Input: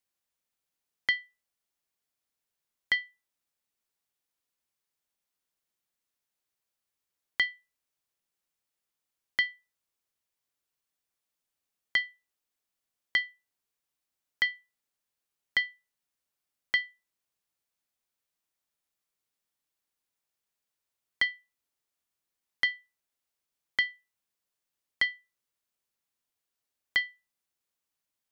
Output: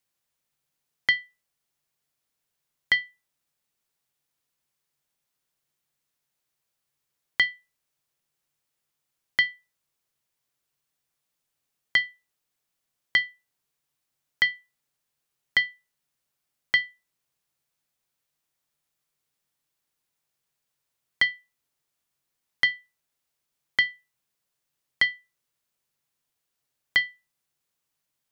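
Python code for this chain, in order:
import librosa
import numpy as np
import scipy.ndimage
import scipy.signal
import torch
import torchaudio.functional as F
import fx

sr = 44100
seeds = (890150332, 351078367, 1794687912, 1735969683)

y = fx.peak_eq(x, sr, hz=140.0, db=12.0, octaves=0.21)
y = y * librosa.db_to_amplitude(5.0)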